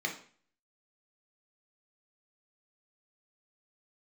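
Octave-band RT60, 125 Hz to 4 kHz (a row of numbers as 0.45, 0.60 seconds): 0.50, 0.50, 0.45, 0.45, 0.45, 0.45 seconds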